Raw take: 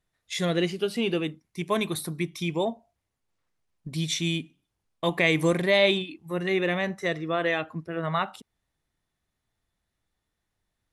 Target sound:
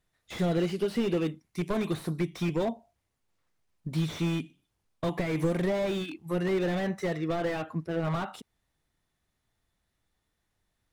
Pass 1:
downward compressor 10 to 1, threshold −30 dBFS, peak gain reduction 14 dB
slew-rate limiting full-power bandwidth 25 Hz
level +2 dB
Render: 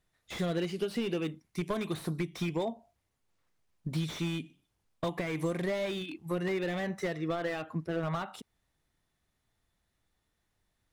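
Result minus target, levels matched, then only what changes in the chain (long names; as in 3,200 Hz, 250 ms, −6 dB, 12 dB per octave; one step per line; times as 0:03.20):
downward compressor: peak gain reduction +6 dB
change: downward compressor 10 to 1, threshold −23.5 dBFS, peak gain reduction 8.5 dB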